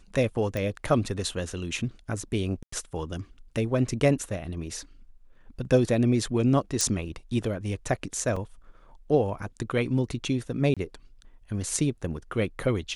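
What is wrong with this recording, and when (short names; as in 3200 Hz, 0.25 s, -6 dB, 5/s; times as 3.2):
0.57 pop
2.63–2.72 gap 94 ms
6.81 pop -11 dBFS
8.36 gap 4.5 ms
10.74–10.77 gap 26 ms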